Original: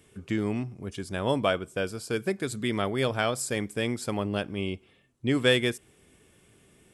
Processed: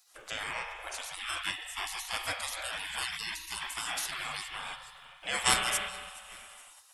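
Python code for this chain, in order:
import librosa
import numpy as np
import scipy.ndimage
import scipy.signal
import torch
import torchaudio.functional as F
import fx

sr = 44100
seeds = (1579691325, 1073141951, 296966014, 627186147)

p1 = fx.spec_quant(x, sr, step_db=15)
p2 = fx.level_steps(p1, sr, step_db=22)
p3 = p1 + F.gain(torch.from_numpy(p2), 1.5).numpy()
p4 = fx.low_shelf(p3, sr, hz=260.0, db=5.5, at=(1.7, 2.35), fade=0.02)
p5 = p4 + fx.echo_feedback(p4, sr, ms=422, feedback_pct=43, wet_db=-22.0, dry=0)
p6 = fx.rev_spring(p5, sr, rt60_s=2.1, pass_ms=(34,), chirp_ms=40, drr_db=4.0)
p7 = fx.spec_gate(p6, sr, threshold_db=-25, keep='weak')
y = F.gain(torch.from_numpy(p7), 8.5).numpy()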